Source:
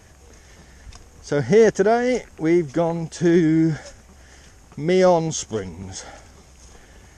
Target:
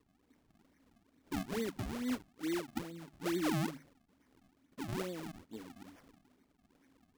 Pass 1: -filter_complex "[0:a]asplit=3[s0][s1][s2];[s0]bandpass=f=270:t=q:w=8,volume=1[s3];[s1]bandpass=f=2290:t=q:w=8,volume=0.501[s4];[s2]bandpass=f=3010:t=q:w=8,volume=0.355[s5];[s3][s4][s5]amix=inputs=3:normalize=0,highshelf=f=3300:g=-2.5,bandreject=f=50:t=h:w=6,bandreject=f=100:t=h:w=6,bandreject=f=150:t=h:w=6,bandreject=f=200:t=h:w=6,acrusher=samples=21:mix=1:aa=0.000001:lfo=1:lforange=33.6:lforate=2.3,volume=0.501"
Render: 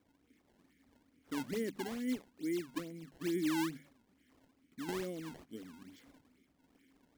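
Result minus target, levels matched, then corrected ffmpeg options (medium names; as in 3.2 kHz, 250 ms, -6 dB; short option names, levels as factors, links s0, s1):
decimation with a swept rate: distortion -10 dB
-filter_complex "[0:a]asplit=3[s0][s1][s2];[s0]bandpass=f=270:t=q:w=8,volume=1[s3];[s1]bandpass=f=2290:t=q:w=8,volume=0.501[s4];[s2]bandpass=f=3010:t=q:w=8,volume=0.355[s5];[s3][s4][s5]amix=inputs=3:normalize=0,highshelf=f=3300:g=-2.5,bandreject=f=50:t=h:w=6,bandreject=f=100:t=h:w=6,bandreject=f=150:t=h:w=6,bandreject=f=200:t=h:w=6,acrusher=samples=53:mix=1:aa=0.000001:lfo=1:lforange=84.8:lforate=2.3,volume=0.501"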